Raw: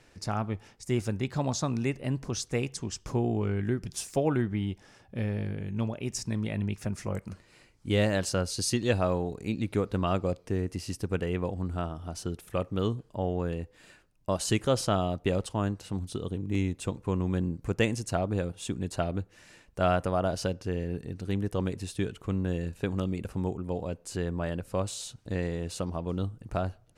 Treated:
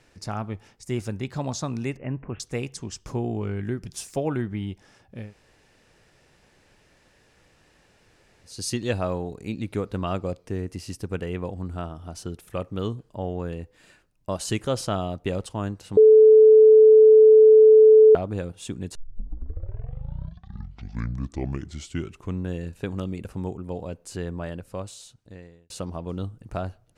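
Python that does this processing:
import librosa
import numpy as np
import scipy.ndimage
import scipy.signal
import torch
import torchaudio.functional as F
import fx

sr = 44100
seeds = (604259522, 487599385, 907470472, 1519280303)

y = fx.steep_lowpass(x, sr, hz=2700.0, slope=72, at=(1.97, 2.4))
y = fx.edit(y, sr, fx.room_tone_fill(start_s=5.22, length_s=3.33, crossfade_s=0.24),
    fx.bleep(start_s=15.97, length_s=2.18, hz=435.0, db=-8.5),
    fx.tape_start(start_s=18.95, length_s=3.54),
    fx.fade_out_span(start_s=24.29, length_s=1.41), tone=tone)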